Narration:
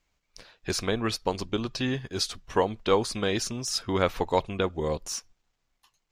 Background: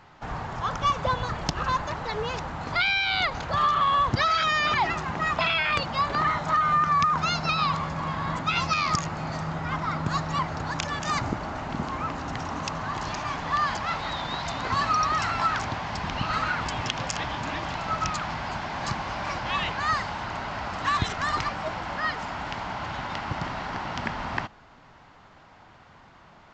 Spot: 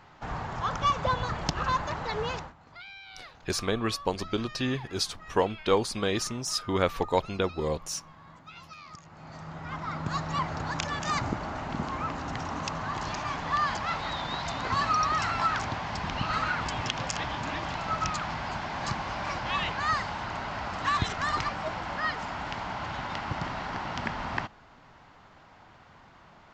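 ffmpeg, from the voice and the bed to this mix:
ffmpeg -i stem1.wav -i stem2.wav -filter_complex "[0:a]adelay=2800,volume=-1dB[link_01];[1:a]volume=18.5dB,afade=type=out:start_time=2.31:duration=0.23:silence=0.0944061,afade=type=in:start_time=9.03:duration=1.46:silence=0.1[link_02];[link_01][link_02]amix=inputs=2:normalize=0" out.wav

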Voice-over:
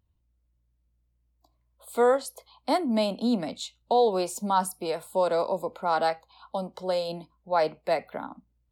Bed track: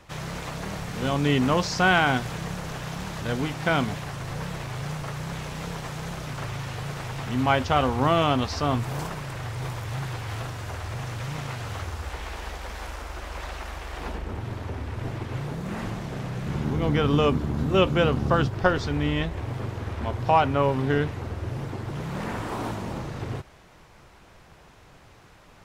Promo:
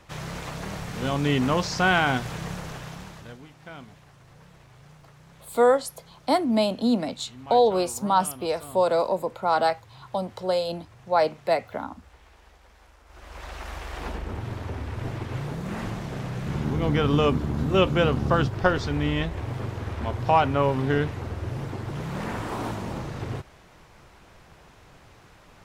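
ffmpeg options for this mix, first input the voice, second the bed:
ffmpeg -i stem1.wav -i stem2.wav -filter_complex "[0:a]adelay=3600,volume=3dB[link_01];[1:a]volume=18dB,afade=type=out:start_time=2.53:duration=0.86:silence=0.125893,afade=type=in:start_time=13.05:duration=0.7:silence=0.112202[link_02];[link_01][link_02]amix=inputs=2:normalize=0" out.wav

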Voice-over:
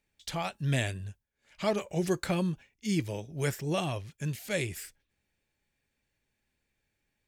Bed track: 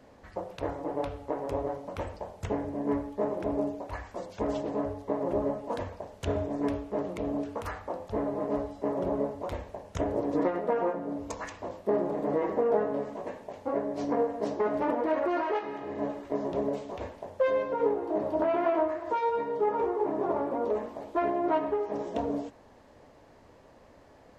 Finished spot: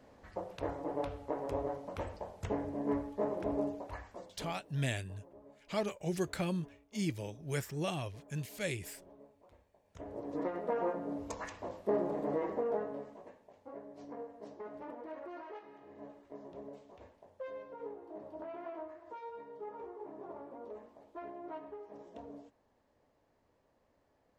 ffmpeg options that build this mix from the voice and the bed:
ffmpeg -i stem1.wav -i stem2.wav -filter_complex "[0:a]adelay=4100,volume=-5.5dB[link_01];[1:a]volume=19dB,afade=type=out:start_time=3.72:duration=0.9:silence=0.0668344,afade=type=in:start_time=9.82:duration=1.14:silence=0.0668344,afade=type=out:start_time=12.09:duration=1.28:silence=0.211349[link_02];[link_01][link_02]amix=inputs=2:normalize=0" out.wav

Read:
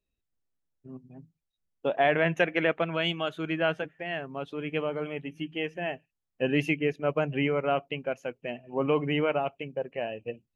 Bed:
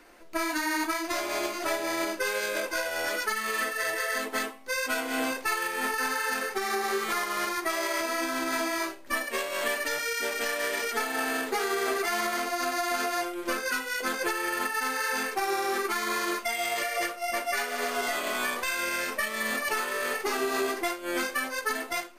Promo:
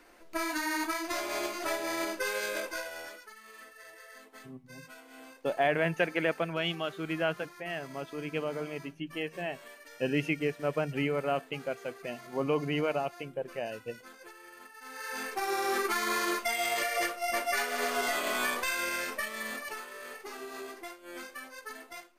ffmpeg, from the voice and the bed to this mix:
ffmpeg -i stem1.wav -i stem2.wav -filter_complex "[0:a]adelay=3600,volume=-3.5dB[link_01];[1:a]volume=17dB,afade=type=out:start_time=2.5:duration=0.71:silence=0.125893,afade=type=in:start_time=14.8:duration=0.94:silence=0.0944061,afade=type=out:start_time=18.55:duration=1.33:silence=0.223872[link_02];[link_01][link_02]amix=inputs=2:normalize=0" out.wav

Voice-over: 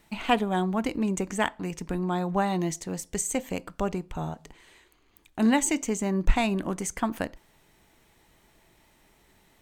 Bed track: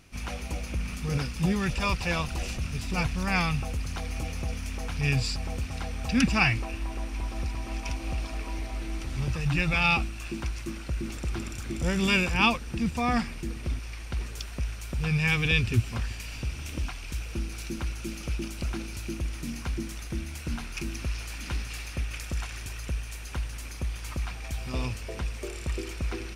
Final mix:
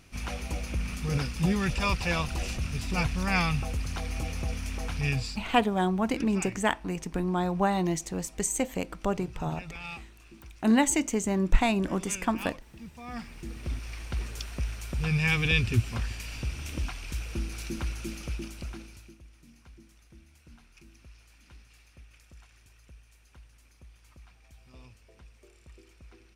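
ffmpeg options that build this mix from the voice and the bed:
ffmpeg -i stem1.wav -i stem2.wav -filter_complex "[0:a]adelay=5250,volume=0dB[link_01];[1:a]volume=16.5dB,afade=type=out:start_time=4.9:duration=0.64:silence=0.141254,afade=type=in:start_time=13.05:duration=0.87:silence=0.149624,afade=type=out:start_time=17.96:duration=1.21:silence=0.0944061[link_02];[link_01][link_02]amix=inputs=2:normalize=0" out.wav

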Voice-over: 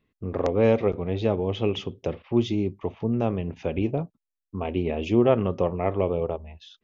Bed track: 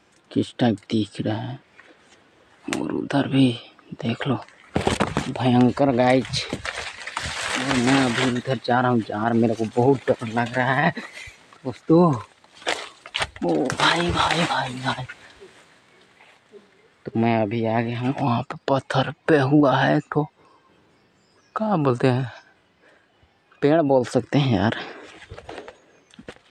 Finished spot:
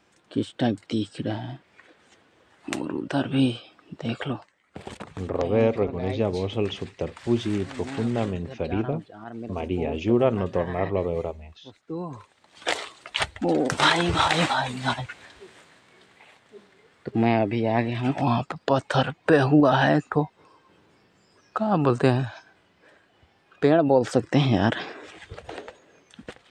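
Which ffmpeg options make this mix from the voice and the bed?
ffmpeg -i stem1.wav -i stem2.wav -filter_complex "[0:a]adelay=4950,volume=-1dB[link_01];[1:a]volume=12.5dB,afade=type=out:start_time=4.21:duration=0.31:silence=0.211349,afade=type=in:start_time=12.1:duration=0.64:silence=0.149624[link_02];[link_01][link_02]amix=inputs=2:normalize=0" out.wav

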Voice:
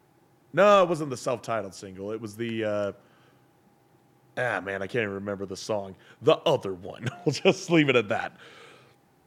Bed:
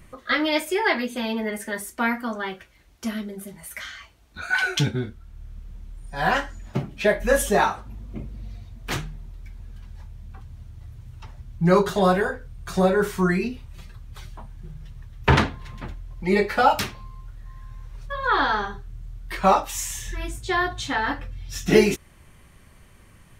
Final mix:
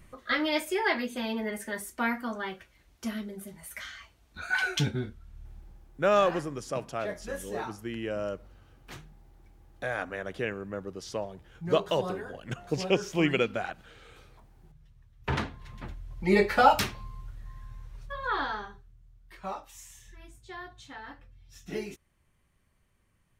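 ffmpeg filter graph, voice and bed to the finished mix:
ffmpeg -i stem1.wav -i stem2.wav -filter_complex "[0:a]adelay=5450,volume=-5dB[link_01];[1:a]volume=10dB,afade=type=out:start_time=5.37:duration=0.53:silence=0.251189,afade=type=in:start_time=15.15:duration=1.25:silence=0.16788,afade=type=out:start_time=17.2:duration=1.76:silence=0.133352[link_02];[link_01][link_02]amix=inputs=2:normalize=0" out.wav

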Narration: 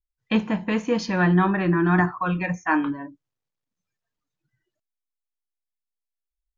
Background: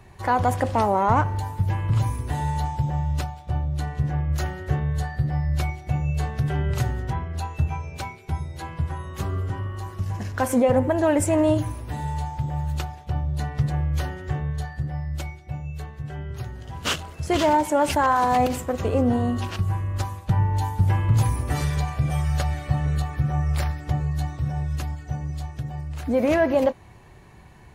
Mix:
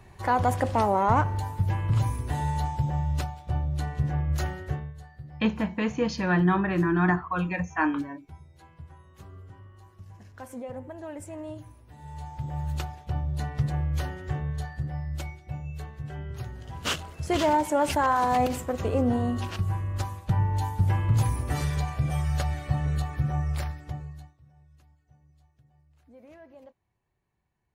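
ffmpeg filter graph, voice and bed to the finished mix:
ffmpeg -i stem1.wav -i stem2.wav -filter_complex "[0:a]adelay=5100,volume=-3.5dB[link_01];[1:a]volume=13dB,afade=type=out:start_time=4.53:duration=0.41:silence=0.149624,afade=type=in:start_time=11.97:duration=0.73:silence=0.16788,afade=type=out:start_time=23.31:duration=1.03:silence=0.0446684[link_02];[link_01][link_02]amix=inputs=2:normalize=0" out.wav

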